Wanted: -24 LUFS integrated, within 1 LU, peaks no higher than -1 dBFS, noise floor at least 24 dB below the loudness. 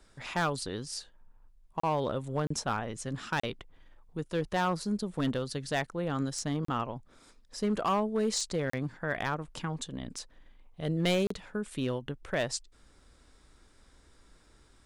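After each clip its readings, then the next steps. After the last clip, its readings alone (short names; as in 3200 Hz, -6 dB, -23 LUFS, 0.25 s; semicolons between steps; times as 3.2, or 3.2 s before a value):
clipped 0.8%; flat tops at -22.5 dBFS; dropouts 6; longest dropout 34 ms; loudness -33.0 LUFS; peak -22.5 dBFS; loudness target -24.0 LUFS
-> clip repair -22.5 dBFS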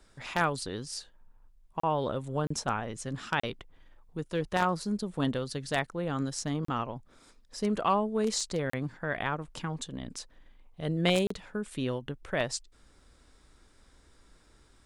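clipped 0.0%; dropouts 6; longest dropout 34 ms
-> interpolate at 1.8/2.47/3.4/6.65/8.7/11.27, 34 ms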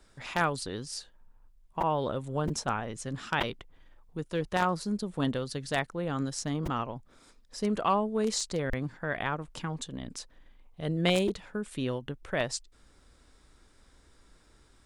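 dropouts 0; loudness -32.0 LUFS; peak -13.5 dBFS; loudness target -24.0 LUFS
-> gain +8 dB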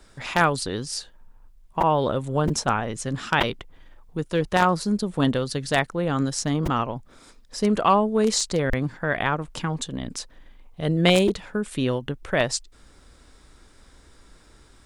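loudness -24.0 LUFS; peak -5.5 dBFS; noise floor -53 dBFS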